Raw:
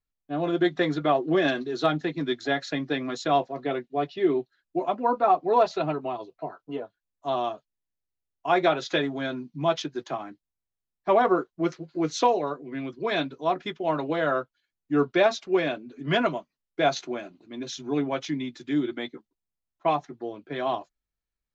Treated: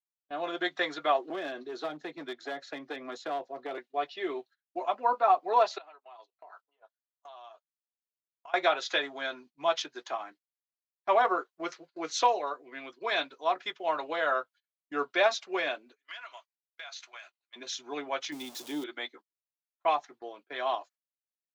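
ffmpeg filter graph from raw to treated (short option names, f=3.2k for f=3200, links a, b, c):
-filter_complex "[0:a]asettb=1/sr,asplit=3[a][b][c];[a]atrim=end=1.304[d];[b]atrim=start=1.3:end=3.78,asetpts=PTS-STARTPTS,afade=t=in:d=0.004:c=qsin,afade=t=out:st=2.476:d=0.004:c=qsin,acrossover=split=590|3400[e][f][g];[e]acompressor=threshold=-29dB:ratio=4[h];[f]acompressor=threshold=-35dB:ratio=4[i];[g]acompressor=threshold=-46dB:ratio=4[j];[h][i][j]amix=inputs=3:normalize=0,aeval=exprs='clip(val(0),-1,0.0447)':c=same,tiltshelf=f=770:g=6.5[k];[c]atrim=start=3.776[l];[d][k]acrossfade=d=0.004:c1=hsin:c2=qsin[m];[m][l]acrossfade=d=0.004:c1=qsin:c2=hsin,asettb=1/sr,asplit=3[n][o][p];[n]atrim=end=5.784[q];[o]atrim=start=5.78:end=8.54,asetpts=PTS-STARTPTS,afade=t=in:d=0.004:c=qsin,afade=t=out:st=2.756:d=0.004:c=qsin,acompressor=threshold=-40dB:ratio=16:attack=3.2:release=140:knee=1:detection=peak,highpass=570[r];[p]atrim=start=8.536[s];[q][r]acrossfade=d=0.004:c1=hsin:c2=qsin[t];[t][s]acrossfade=d=0.004:c1=qsin:c2=hsin,asettb=1/sr,asplit=3[u][v][w];[u]atrim=end=15.964[x];[v]atrim=start=15.96:end=17.56,asetpts=PTS-STARTPTS,afade=t=in:d=0.004:c=qsin,afade=t=out:st=1.596:d=0.004:c=qsin,highpass=1.4k,acompressor=threshold=-39dB:ratio=10:attack=3.2:release=140:knee=1:detection=peak[y];[w]atrim=start=17.556[z];[x][y]acrossfade=d=0.004:c1=hsin:c2=qsin[aa];[aa][z]acrossfade=d=0.004:c1=qsin:c2=hsin,asettb=1/sr,asplit=3[ab][ac][ad];[ab]atrim=end=18.324[ae];[ac]atrim=start=18.32:end=18.84,asetpts=PTS-STARTPTS,afade=t=in:d=0.004:c=qsin,afade=t=out:st=0.516:d=0.004:c=qsin,aeval=exprs='val(0)+0.5*0.0119*sgn(val(0))':c=same,equalizer=f=1.8k:t=o:w=1.6:g=-14.5,acontrast=30[af];[ad]atrim=start=18.836[ag];[ae][af]acrossfade=d=0.004:c1=hsin:c2=qsin[ah];[ah][ag]acrossfade=d=0.004:c1=qsin:c2=hsin,highpass=710,agate=range=-21dB:threshold=-53dB:ratio=16:detection=peak"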